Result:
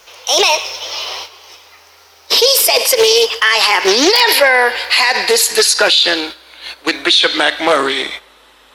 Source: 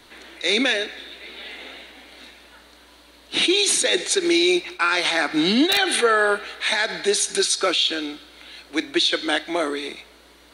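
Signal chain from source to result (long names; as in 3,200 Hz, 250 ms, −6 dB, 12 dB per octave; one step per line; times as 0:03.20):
gliding playback speed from 153% → 88%
guitar amp tone stack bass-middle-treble 5-5-5
noise gate −49 dBFS, range −9 dB
octave-band graphic EQ 125/500/1,000/8,000 Hz −6/+10/+8/−5 dB
boost into a limiter +22.5 dB
highs frequency-modulated by the lows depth 0.19 ms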